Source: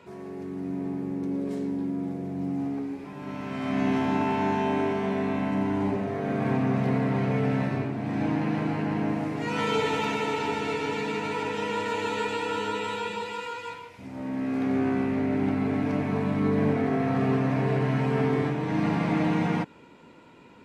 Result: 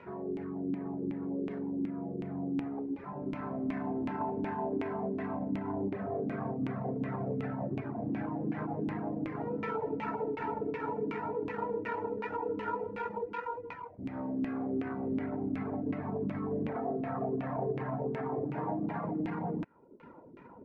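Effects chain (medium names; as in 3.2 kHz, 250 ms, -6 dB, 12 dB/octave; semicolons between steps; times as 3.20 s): median filter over 15 samples; 16.69–19.05 s: peaking EQ 720 Hz +6.5 dB 1.4 oct; peak limiter -20 dBFS, peak gain reduction 8.5 dB; reverb removal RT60 0.75 s; compression 2.5:1, threshold -37 dBFS, peak gain reduction 8 dB; LFO low-pass saw down 2.7 Hz 280–2500 Hz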